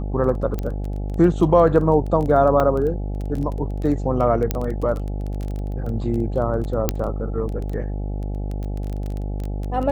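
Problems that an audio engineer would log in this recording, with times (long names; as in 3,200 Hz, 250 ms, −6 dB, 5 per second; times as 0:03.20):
mains buzz 50 Hz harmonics 17 −26 dBFS
surface crackle 13 per second −26 dBFS
0:00.59: click −14 dBFS
0:02.60: drop-out 2.2 ms
0:04.51: click −7 dBFS
0:06.89: click −4 dBFS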